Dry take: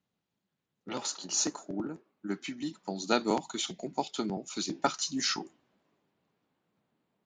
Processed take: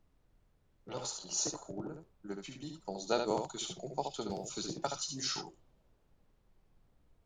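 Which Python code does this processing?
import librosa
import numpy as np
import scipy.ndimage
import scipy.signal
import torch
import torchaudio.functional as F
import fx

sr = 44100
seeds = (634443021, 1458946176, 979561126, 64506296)

y = fx.graphic_eq_10(x, sr, hz=(125, 250, 500, 2000), db=(10, -11, 6, -8))
y = fx.dmg_noise_colour(y, sr, seeds[0], colour='brown', level_db=-63.0)
y = y + 10.0 ** (-5.5 / 20.0) * np.pad(y, (int(71 * sr / 1000.0), 0))[:len(y)]
y = fx.band_squash(y, sr, depth_pct=70, at=(4.3, 4.97))
y = y * 10.0 ** (-5.0 / 20.0)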